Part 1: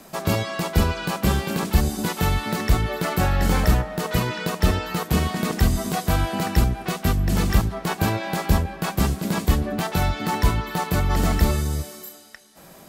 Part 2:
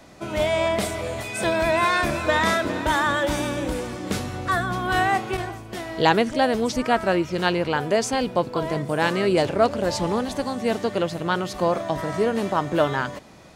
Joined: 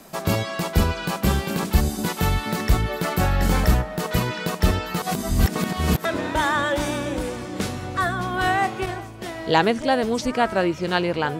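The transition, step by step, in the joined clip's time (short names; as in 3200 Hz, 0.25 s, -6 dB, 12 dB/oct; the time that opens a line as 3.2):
part 1
5.02–6.05 reverse
6.05 switch to part 2 from 2.56 s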